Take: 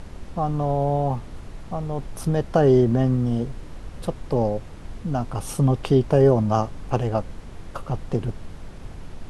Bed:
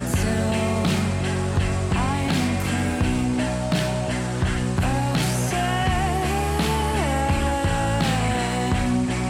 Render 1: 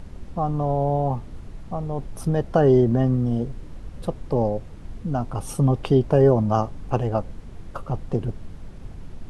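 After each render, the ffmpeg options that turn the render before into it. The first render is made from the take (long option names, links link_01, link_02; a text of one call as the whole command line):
ffmpeg -i in.wav -af "afftdn=noise_reduction=6:noise_floor=-39" out.wav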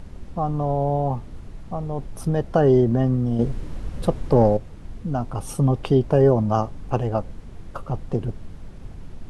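ffmpeg -i in.wav -filter_complex "[0:a]asettb=1/sr,asplit=3[link_01][link_02][link_03];[link_01]atrim=end=3.394[link_04];[link_02]atrim=start=3.39:end=4.57,asetpts=PTS-STARTPTS,afade=type=in:duration=0.004:curve=qsin,afade=type=out:start_time=1.176:duration=0.004:curve=qsin,acontrast=61[link_05];[link_03]atrim=start=4.566[link_06];[link_04][link_05]acrossfade=duration=0.004:curve1=hsin:curve2=qsin[link_07];[link_07][link_06]acrossfade=duration=0.004:curve1=qsin:curve2=hsin" out.wav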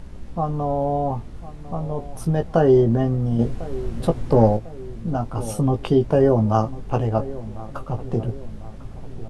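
ffmpeg -i in.wav -filter_complex "[0:a]asplit=2[link_01][link_02];[link_02]adelay=18,volume=-6.5dB[link_03];[link_01][link_03]amix=inputs=2:normalize=0,asplit=2[link_04][link_05];[link_05]adelay=1049,lowpass=frequency=1100:poles=1,volume=-16dB,asplit=2[link_06][link_07];[link_07]adelay=1049,lowpass=frequency=1100:poles=1,volume=0.5,asplit=2[link_08][link_09];[link_09]adelay=1049,lowpass=frequency=1100:poles=1,volume=0.5,asplit=2[link_10][link_11];[link_11]adelay=1049,lowpass=frequency=1100:poles=1,volume=0.5[link_12];[link_04][link_06][link_08][link_10][link_12]amix=inputs=5:normalize=0" out.wav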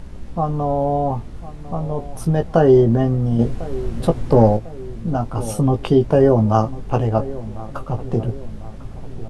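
ffmpeg -i in.wav -af "volume=3dB,alimiter=limit=-1dB:level=0:latency=1" out.wav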